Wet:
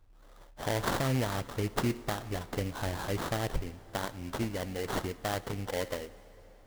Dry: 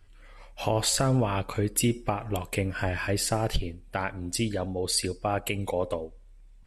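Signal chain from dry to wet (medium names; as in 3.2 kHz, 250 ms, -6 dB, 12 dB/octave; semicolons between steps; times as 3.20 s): sample-rate reducer 2.5 kHz, jitter 20%; plate-style reverb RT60 5 s, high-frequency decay 0.8×, DRR 17.5 dB; trim -5.5 dB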